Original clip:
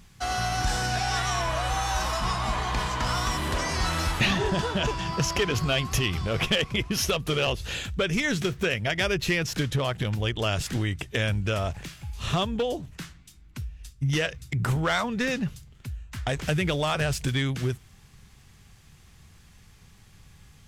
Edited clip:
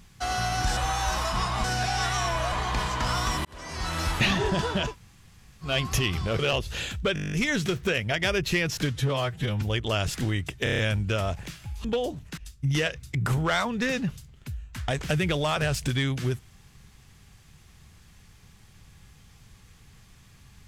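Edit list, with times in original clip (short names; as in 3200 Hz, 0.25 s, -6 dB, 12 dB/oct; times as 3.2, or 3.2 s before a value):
1.65–2.52 move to 0.77
3.45–4.13 fade in
4.88–5.68 room tone, crossfade 0.16 s
6.39–7.33 cut
8.08 stutter 0.02 s, 10 plays
9.67–10.14 stretch 1.5×
11.16 stutter 0.03 s, 6 plays
12.22–12.51 cut
13.04–13.76 cut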